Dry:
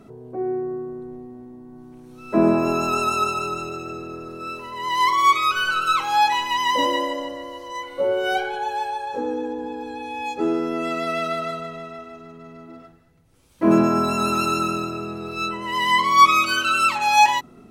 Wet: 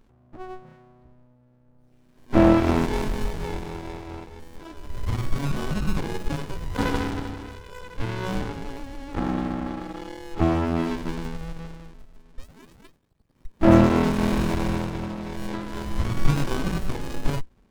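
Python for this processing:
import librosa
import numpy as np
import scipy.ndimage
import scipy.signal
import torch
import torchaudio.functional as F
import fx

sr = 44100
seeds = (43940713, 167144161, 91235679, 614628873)

y = fx.noise_reduce_blind(x, sr, reduce_db=20)
y = fx.spec_paint(y, sr, seeds[0], shape='rise', start_s=12.38, length_s=1.08, low_hz=1800.0, high_hz=5800.0, level_db=-28.0)
y = fx.running_max(y, sr, window=65)
y = y * 10.0 ** (4.0 / 20.0)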